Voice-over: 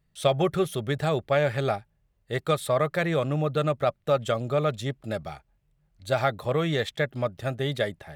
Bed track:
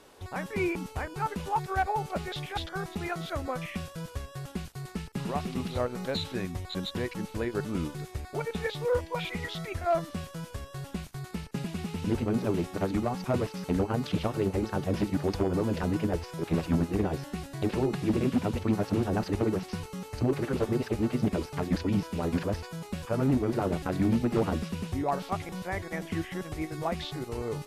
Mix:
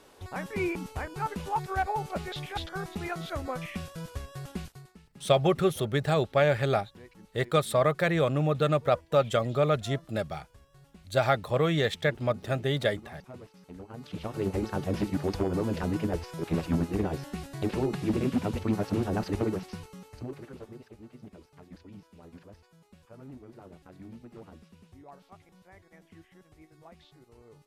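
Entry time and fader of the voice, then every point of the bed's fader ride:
5.05 s, 0.0 dB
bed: 4.66 s -1 dB
4.95 s -18 dB
13.79 s -18 dB
14.48 s -1 dB
19.43 s -1 dB
20.96 s -21 dB

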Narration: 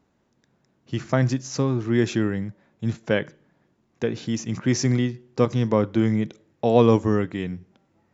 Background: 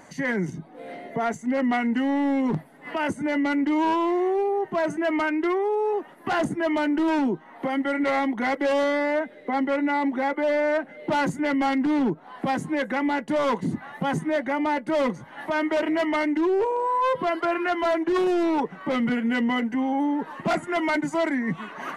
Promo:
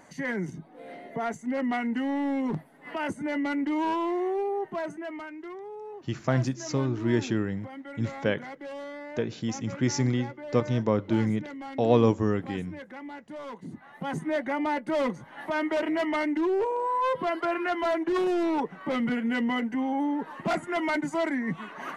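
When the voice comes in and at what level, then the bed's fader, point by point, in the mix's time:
5.15 s, -4.5 dB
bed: 4.63 s -5 dB
5.3 s -16.5 dB
13.52 s -16.5 dB
14.31 s -3.5 dB

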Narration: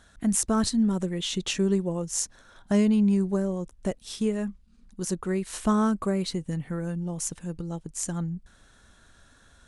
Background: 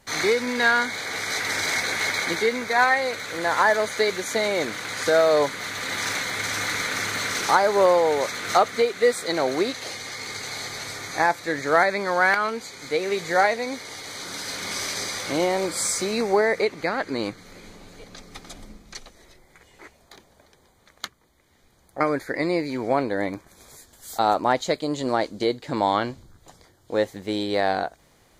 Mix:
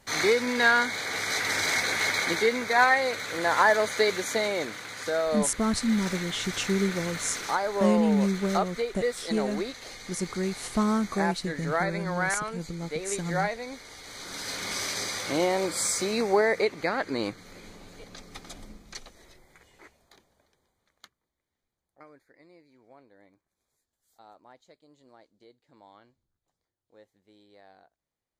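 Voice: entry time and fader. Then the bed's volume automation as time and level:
5.10 s, -2.0 dB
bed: 4.22 s -1.5 dB
4.96 s -9 dB
13.97 s -9 dB
14.5 s -2.5 dB
19.43 s -2.5 dB
22.36 s -32.5 dB

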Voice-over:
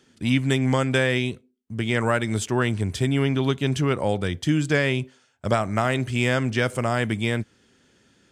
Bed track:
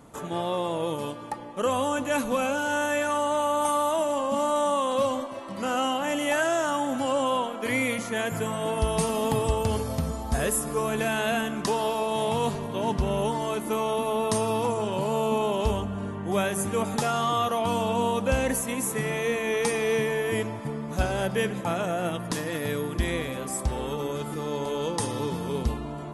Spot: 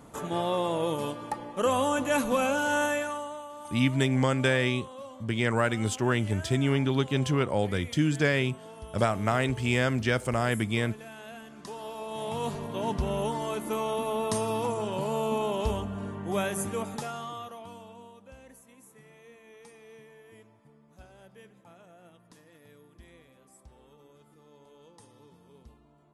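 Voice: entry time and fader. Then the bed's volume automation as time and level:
3.50 s, -3.5 dB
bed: 2.85 s 0 dB
3.5 s -18.5 dB
11.42 s -18.5 dB
12.62 s -3.5 dB
16.62 s -3.5 dB
18.19 s -26.5 dB

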